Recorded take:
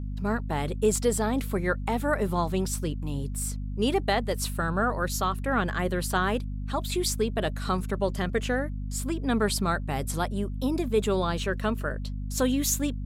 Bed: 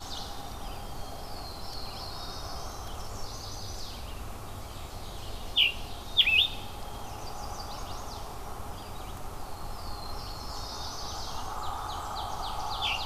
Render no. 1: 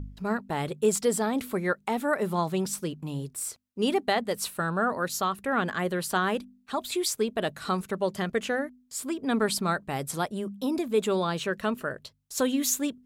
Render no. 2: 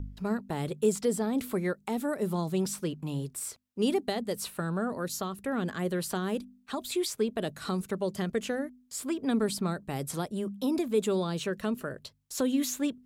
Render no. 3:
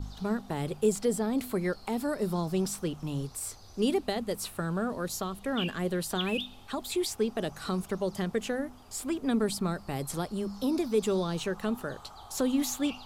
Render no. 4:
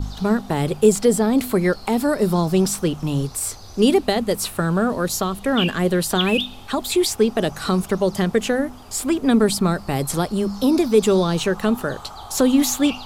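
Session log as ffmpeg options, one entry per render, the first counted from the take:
-af "bandreject=f=50:t=h:w=4,bandreject=f=100:t=h:w=4,bandreject=f=150:t=h:w=4,bandreject=f=200:t=h:w=4,bandreject=f=250:t=h:w=4"
-filter_complex "[0:a]acrossover=split=490|4100[s0][s1][s2];[s1]acompressor=threshold=0.0141:ratio=6[s3];[s2]alimiter=level_in=1.41:limit=0.0631:level=0:latency=1:release=268,volume=0.708[s4];[s0][s3][s4]amix=inputs=3:normalize=0"
-filter_complex "[1:a]volume=0.211[s0];[0:a][s0]amix=inputs=2:normalize=0"
-af "volume=3.76"

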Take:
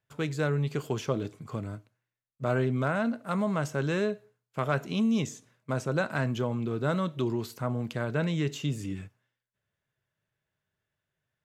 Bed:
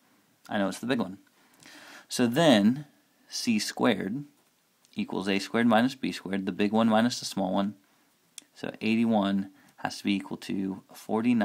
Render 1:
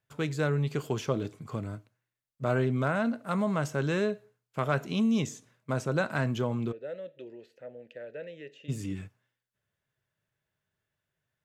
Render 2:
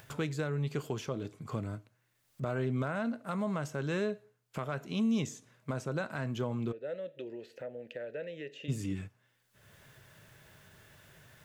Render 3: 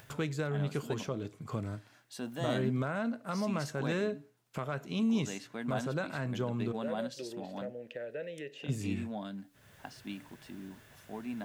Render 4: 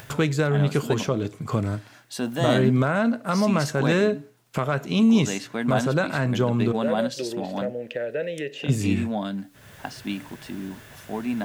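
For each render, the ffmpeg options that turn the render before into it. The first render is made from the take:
-filter_complex "[0:a]asplit=3[s0][s1][s2];[s0]afade=t=out:st=6.71:d=0.02[s3];[s1]asplit=3[s4][s5][s6];[s4]bandpass=f=530:t=q:w=8,volume=1[s7];[s5]bandpass=f=1840:t=q:w=8,volume=0.501[s8];[s6]bandpass=f=2480:t=q:w=8,volume=0.355[s9];[s7][s8][s9]amix=inputs=3:normalize=0,afade=t=in:st=6.71:d=0.02,afade=t=out:st=8.68:d=0.02[s10];[s2]afade=t=in:st=8.68:d=0.02[s11];[s3][s10][s11]amix=inputs=3:normalize=0"
-af "acompressor=mode=upward:threshold=0.0158:ratio=2.5,alimiter=limit=0.0708:level=0:latency=1:release=491"
-filter_complex "[1:a]volume=0.178[s0];[0:a][s0]amix=inputs=2:normalize=0"
-af "volume=3.98"

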